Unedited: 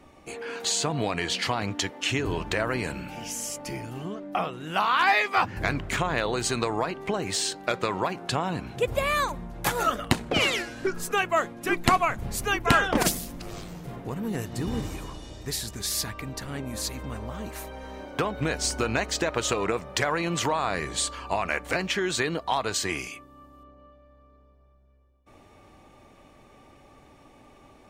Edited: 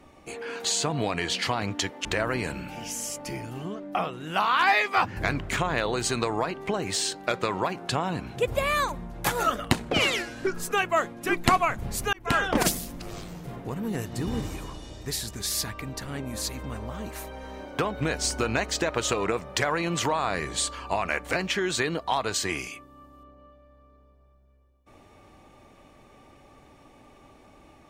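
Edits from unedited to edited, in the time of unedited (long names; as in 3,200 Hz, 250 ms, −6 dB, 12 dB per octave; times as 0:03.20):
0:02.05–0:02.45: remove
0:12.53–0:13.01: fade in equal-power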